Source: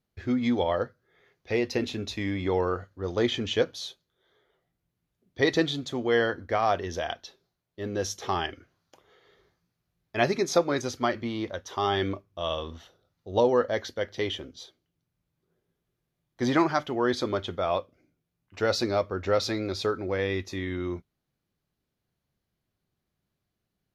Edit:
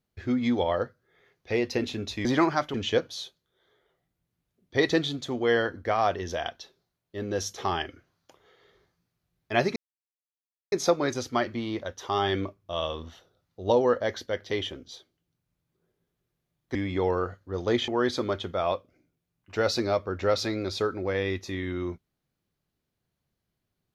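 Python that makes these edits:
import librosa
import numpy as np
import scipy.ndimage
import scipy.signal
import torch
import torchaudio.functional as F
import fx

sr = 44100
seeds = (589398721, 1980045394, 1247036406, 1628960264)

y = fx.edit(x, sr, fx.swap(start_s=2.25, length_s=1.13, other_s=16.43, other_length_s=0.49),
    fx.insert_silence(at_s=10.4, length_s=0.96), tone=tone)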